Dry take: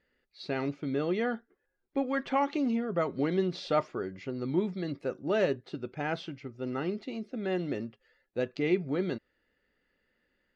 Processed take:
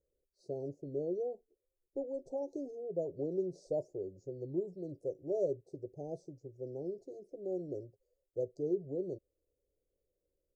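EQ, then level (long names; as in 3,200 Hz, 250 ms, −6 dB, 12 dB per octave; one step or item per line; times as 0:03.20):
inverse Chebyshev band-stop filter 1,300–3,200 Hz, stop band 60 dB
phaser with its sweep stopped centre 550 Hz, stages 4
−2.5 dB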